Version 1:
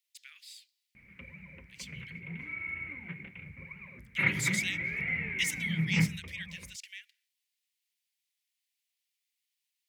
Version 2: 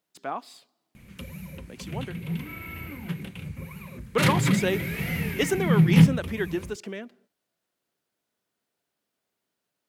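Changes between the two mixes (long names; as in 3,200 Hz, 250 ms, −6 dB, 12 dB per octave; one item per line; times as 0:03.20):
speech: remove Butterworth high-pass 2,000 Hz 48 dB per octave
background: remove transistor ladder low-pass 2,300 Hz, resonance 80%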